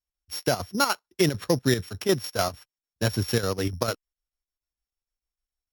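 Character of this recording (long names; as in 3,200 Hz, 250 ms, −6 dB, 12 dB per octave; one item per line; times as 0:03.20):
a buzz of ramps at a fixed pitch in blocks of 8 samples
chopped level 6.7 Hz, depth 60%, duty 65%
Opus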